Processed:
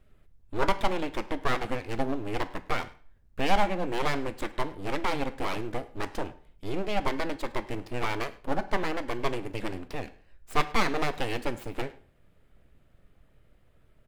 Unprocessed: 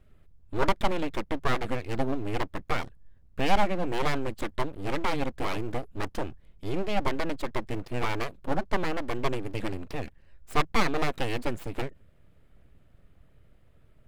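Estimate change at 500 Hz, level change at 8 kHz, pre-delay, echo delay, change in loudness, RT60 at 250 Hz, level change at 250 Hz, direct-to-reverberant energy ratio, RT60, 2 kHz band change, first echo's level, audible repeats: −0.5 dB, 0.0 dB, 11 ms, 104 ms, −0.5 dB, 0.45 s, −1.0 dB, 11.0 dB, 0.45 s, +0.5 dB, −22.5 dB, 1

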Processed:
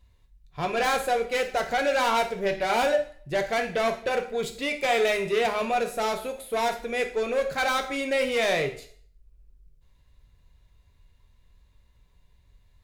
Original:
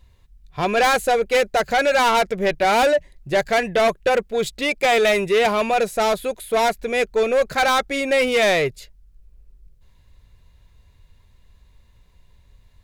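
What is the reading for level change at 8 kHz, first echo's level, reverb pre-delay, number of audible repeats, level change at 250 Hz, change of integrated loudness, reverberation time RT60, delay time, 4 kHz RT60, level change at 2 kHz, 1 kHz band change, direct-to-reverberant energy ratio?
−7.0 dB, no echo audible, 4 ms, no echo audible, −7.0 dB, −7.0 dB, 0.55 s, no echo audible, 0.45 s, −6.5 dB, −6.5 dB, 4.5 dB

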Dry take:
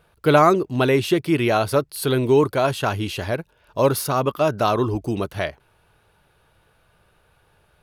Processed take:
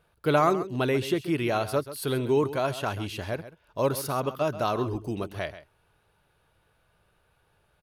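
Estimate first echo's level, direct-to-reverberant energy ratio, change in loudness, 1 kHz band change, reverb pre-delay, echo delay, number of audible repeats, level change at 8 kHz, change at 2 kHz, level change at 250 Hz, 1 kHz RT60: −14.0 dB, no reverb audible, −7.5 dB, −7.5 dB, no reverb audible, 134 ms, 1, −7.5 dB, −7.5 dB, −7.5 dB, no reverb audible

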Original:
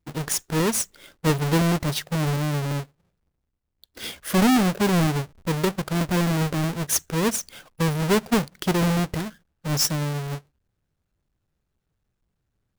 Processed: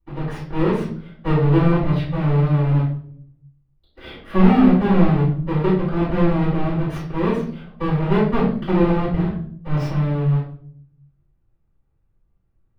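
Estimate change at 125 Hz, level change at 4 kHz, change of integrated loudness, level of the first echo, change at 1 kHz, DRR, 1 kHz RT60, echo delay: +6.5 dB, −9.5 dB, +4.0 dB, no echo audible, +2.5 dB, −13.5 dB, 0.45 s, no echo audible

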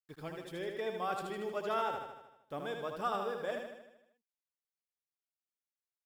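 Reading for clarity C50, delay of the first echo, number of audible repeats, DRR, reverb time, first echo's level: no reverb audible, 77 ms, 7, no reverb audible, no reverb audible, −5.0 dB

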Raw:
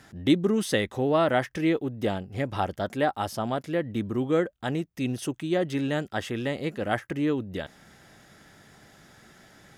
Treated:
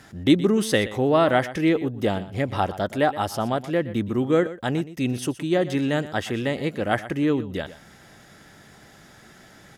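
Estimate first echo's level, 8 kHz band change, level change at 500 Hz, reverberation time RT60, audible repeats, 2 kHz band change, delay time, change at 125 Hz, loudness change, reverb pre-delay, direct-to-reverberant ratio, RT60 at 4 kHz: −15.5 dB, +4.0 dB, +4.0 dB, no reverb audible, 1, +4.0 dB, 121 ms, +4.0 dB, +4.0 dB, no reverb audible, no reverb audible, no reverb audible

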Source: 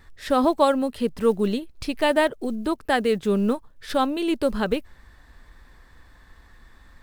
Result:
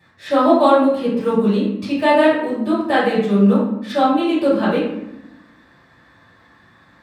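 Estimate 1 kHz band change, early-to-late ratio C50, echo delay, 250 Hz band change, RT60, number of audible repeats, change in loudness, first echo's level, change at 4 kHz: +7.0 dB, 1.5 dB, no echo audible, +8.0 dB, 0.85 s, no echo audible, +7.0 dB, no echo audible, +3.0 dB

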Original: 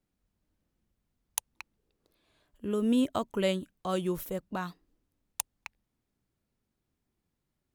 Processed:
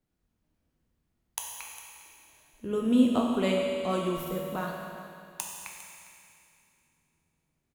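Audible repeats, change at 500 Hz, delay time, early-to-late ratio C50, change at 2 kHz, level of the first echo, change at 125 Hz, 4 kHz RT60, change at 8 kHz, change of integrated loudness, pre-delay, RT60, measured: 1, +3.0 dB, 404 ms, 0.5 dB, +3.5 dB, −15.5 dB, +1.5 dB, 2.6 s, +0.5 dB, +3.0 dB, 5 ms, 2.6 s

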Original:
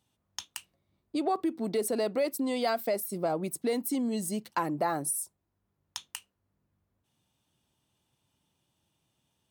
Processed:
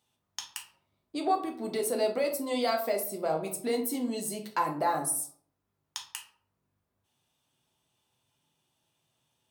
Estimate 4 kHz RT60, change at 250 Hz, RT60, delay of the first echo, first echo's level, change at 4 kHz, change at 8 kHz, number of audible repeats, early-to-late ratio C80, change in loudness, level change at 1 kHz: 0.35 s, −3.0 dB, 0.55 s, no echo audible, no echo audible, +2.0 dB, +1.5 dB, no echo audible, 14.5 dB, +0.5 dB, +2.5 dB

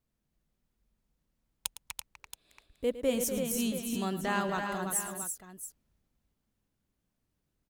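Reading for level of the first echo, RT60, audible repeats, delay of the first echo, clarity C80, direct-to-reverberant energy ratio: −14.0 dB, no reverb audible, 4, 108 ms, no reverb audible, no reverb audible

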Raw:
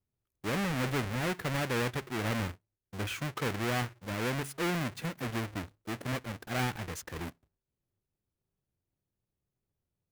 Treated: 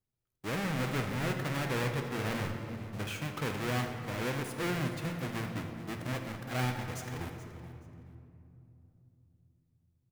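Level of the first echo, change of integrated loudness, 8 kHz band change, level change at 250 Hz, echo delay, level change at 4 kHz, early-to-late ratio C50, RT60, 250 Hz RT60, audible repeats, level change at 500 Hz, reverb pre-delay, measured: −15.5 dB, −1.0 dB, −2.5 dB, −1.0 dB, 427 ms, −2.0 dB, 5.0 dB, 2.7 s, 4.3 s, 2, −1.0 dB, 6 ms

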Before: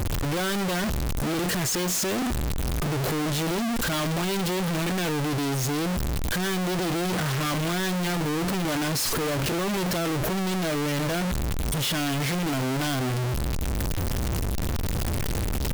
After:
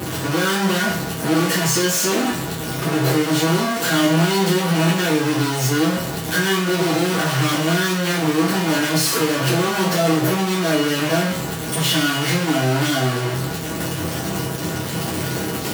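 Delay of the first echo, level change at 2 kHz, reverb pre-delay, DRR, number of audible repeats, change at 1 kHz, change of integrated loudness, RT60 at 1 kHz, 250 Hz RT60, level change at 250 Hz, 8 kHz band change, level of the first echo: no echo audible, +9.0 dB, 6 ms, −9.5 dB, no echo audible, +8.0 dB, +7.5 dB, 0.50 s, 0.50 s, +7.5 dB, +7.0 dB, no echo audible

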